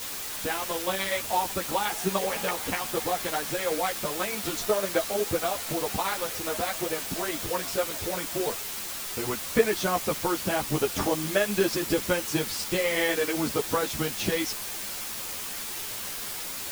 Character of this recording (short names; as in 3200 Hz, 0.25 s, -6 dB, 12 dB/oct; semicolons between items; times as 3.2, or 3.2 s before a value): tremolo saw down 8.1 Hz, depth 45%; a quantiser's noise floor 6-bit, dither triangular; a shimmering, thickened sound